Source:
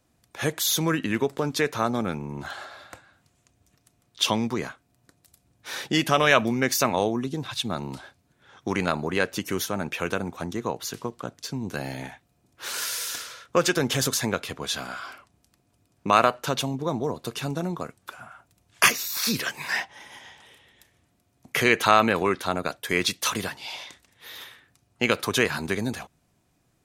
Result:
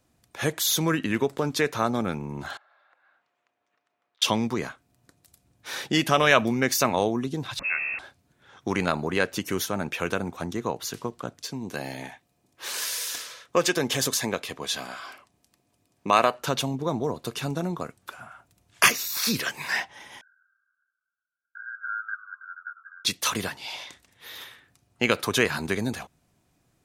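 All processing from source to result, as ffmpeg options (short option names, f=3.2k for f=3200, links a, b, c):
-filter_complex "[0:a]asettb=1/sr,asplit=3[a][b][c];[a]atrim=end=2.574[d];[b]atrim=start=2.57:end=4.22,asetpts=PTS-STARTPTS,afade=t=in:d=0.004:c=qsin,afade=t=out:st=1.646:d=0.004:c=qsin,acompressor=threshold=-56dB:ratio=12:attack=3.2:release=140:knee=1:detection=peak,highpass=680,lowpass=2.1k[e];[c]atrim=start=4.216[f];[d][e]acrossfade=d=0.004:c1=hsin:c2=qsin[g];[g][f]acrossfade=d=0.004:c1=qsin:c2=hsin,asettb=1/sr,asplit=3[h][i][j];[h]atrim=end=7.594[k];[i]atrim=start=7.59:end=7.99,asetpts=PTS-STARTPTS,afade=t=in:d=0.004:c=qsin,afade=t=out:st=0.396:d=0.004:c=qsin,aeval=exprs='val(0)+0.5*0.0282*sgn(val(0))':c=same,lowpass=f=2.4k:t=q:w=0.5098,lowpass=f=2.4k:t=q:w=0.6013,lowpass=f=2.4k:t=q:w=0.9,lowpass=f=2.4k:t=q:w=2.563,afreqshift=-2800[l];[j]atrim=start=7.986[m];[k][l]acrossfade=d=0.004:c1=hsin:c2=qsin[n];[n][m]acrossfade=d=0.004:c1=qsin:c2=hsin,asettb=1/sr,asplit=3[o][p][q];[o]atrim=end=11.434[r];[p]atrim=start=11.43:end=16.4,asetpts=PTS-STARTPTS,afade=t=in:d=0.004:c=qsin,afade=t=out:st=4.966:d=0.004:c=qsin,lowshelf=f=130:g=-10.5,bandreject=f=1.4k:w=7.8[s];[q]atrim=start=16.396[t];[r][s]acrossfade=d=0.004:c1=hsin:c2=qsin[u];[u][t]acrossfade=d=0.004:c1=qsin:c2=hsin,asettb=1/sr,asplit=3[v][w][x];[v]atrim=end=20.214[y];[w]atrim=start=20.21:end=23.05,asetpts=PTS-STARTPTS,afade=t=in:d=0.004:c=qsin,afade=t=out:st=2.836:d=0.004:c=qsin,asuperpass=centerf=1500:order=12:qfactor=6.7,asplit=5[z][aa][ab][ac][ad];[aa]adelay=100,afreqshift=-86,volume=-15.5dB[ae];[ab]adelay=200,afreqshift=-172,volume=-22.6dB[af];[ac]adelay=300,afreqshift=-258,volume=-29.8dB[ag];[ad]adelay=400,afreqshift=-344,volume=-36.9dB[ah];[z][ae][af][ag][ah]amix=inputs=5:normalize=0,atrim=end_sample=125244[ai];[x]atrim=start=23.046[aj];[y][ai]acrossfade=d=0.004:c1=hsin:c2=qsin[ak];[ak][aj]acrossfade=d=0.004:c1=qsin:c2=hsin"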